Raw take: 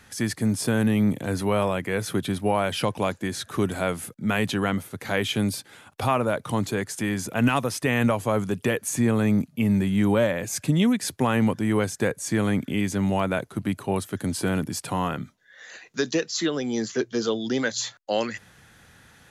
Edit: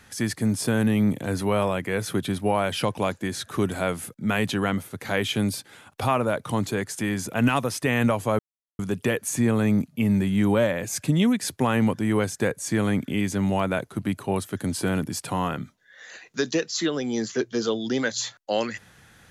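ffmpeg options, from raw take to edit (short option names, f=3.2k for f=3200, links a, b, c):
-filter_complex "[0:a]asplit=2[a][b];[a]atrim=end=8.39,asetpts=PTS-STARTPTS,afade=t=out:st=8.386:d=0.004:c=hsin,apad=pad_dur=0.4[c];[b]atrim=start=8.39,asetpts=PTS-STARTPTS,afade=t=in:d=0.004:c=hsin[d];[c][d]concat=n=2:v=0:a=1"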